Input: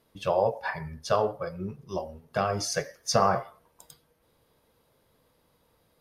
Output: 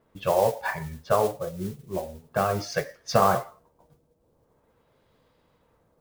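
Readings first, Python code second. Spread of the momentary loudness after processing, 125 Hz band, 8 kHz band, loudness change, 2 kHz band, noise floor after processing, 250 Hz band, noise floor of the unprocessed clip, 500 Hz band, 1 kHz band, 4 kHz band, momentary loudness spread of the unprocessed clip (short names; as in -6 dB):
12 LU, +2.5 dB, -3.5 dB, +2.5 dB, +2.5 dB, -68 dBFS, +2.5 dB, -69 dBFS, +2.5 dB, +2.5 dB, -2.5 dB, 12 LU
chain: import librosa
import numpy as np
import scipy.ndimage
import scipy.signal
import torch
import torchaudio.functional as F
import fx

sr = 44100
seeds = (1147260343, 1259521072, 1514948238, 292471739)

y = fx.filter_lfo_lowpass(x, sr, shape='sine', hz=0.43, low_hz=600.0, high_hz=4200.0, q=0.77)
y = fx.mod_noise(y, sr, seeds[0], snr_db=18)
y = y * librosa.db_to_amplitude(2.5)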